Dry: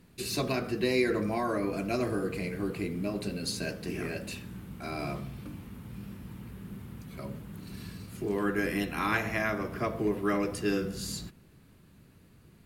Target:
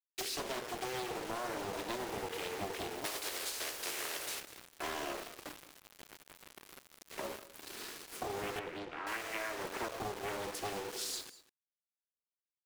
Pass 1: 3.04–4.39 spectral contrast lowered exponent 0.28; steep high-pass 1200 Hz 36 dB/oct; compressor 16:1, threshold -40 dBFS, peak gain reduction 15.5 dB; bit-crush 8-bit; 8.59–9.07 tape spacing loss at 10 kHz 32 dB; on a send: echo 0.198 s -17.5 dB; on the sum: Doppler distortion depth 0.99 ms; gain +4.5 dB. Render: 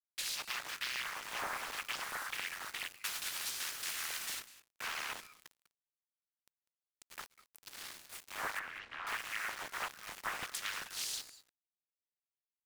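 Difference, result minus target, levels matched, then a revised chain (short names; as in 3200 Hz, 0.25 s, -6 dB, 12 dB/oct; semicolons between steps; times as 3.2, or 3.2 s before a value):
250 Hz band -15.5 dB
3.04–4.39 spectral contrast lowered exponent 0.28; steep high-pass 340 Hz 36 dB/oct; compressor 16:1, threshold -40 dBFS, peak gain reduction 17.5 dB; bit-crush 8-bit; 8.59–9.07 tape spacing loss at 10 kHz 32 dB; on a send: echo 0.198 s -17.5 dB; on the sum: Doppler distortion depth 0.99 ms; gain +4.5 dB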